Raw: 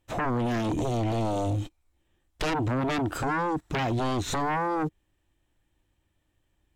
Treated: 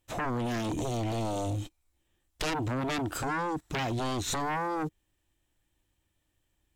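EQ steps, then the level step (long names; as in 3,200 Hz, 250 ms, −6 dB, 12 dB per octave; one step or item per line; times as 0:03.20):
high-shelf EQ 3,500 Hz +8.5 dB
−4.5 dB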